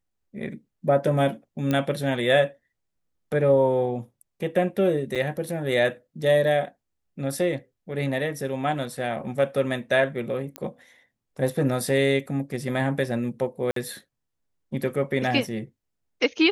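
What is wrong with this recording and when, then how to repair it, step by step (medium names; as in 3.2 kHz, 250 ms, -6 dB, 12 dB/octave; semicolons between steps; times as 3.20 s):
1.71 s: pop -12 dBFS
5.15–5.16 s: dropout 6.5 ms
10.56 s: pop -16 dBFS
13.71–13.76 s: dropout 53 ms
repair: de-click; interpolate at 5.15 s, 6.5 ms; interpolate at 13.71 s, 53 ms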